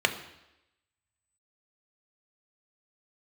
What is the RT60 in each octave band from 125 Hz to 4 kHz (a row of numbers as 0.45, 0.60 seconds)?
0.80, 0.90, 0.90, 0.90, 0.90, 0.90 seconds